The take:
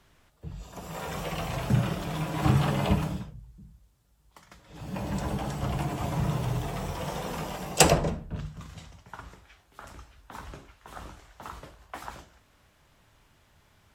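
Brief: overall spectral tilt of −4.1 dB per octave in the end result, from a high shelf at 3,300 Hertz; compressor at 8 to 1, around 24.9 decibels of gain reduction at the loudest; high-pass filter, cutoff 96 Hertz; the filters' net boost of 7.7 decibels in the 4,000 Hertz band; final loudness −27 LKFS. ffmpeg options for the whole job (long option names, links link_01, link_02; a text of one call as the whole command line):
ffmpeg -i in.wav -af "highpass=96,highshelf=frequency=3300:gain=4,equalizer=frequency=4000:width_type=o:gain=7.5,acompressor=threshold=-38dB:ratio=8,volume=16dB" out.wav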